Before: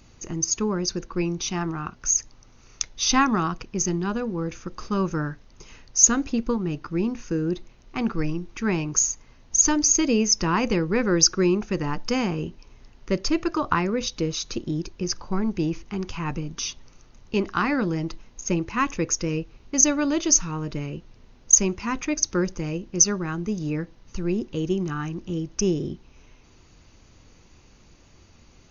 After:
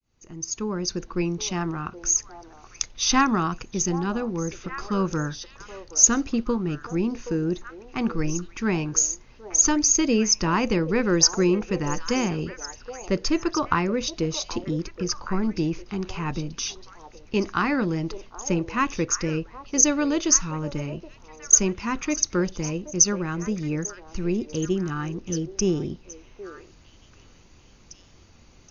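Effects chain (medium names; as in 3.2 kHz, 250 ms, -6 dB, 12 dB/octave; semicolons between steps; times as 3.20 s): fade-in on the opening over 1.01 s; repeats whose band climbs or falls 773 ms, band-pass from 610 Hz, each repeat 1.4 oct, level -8 dB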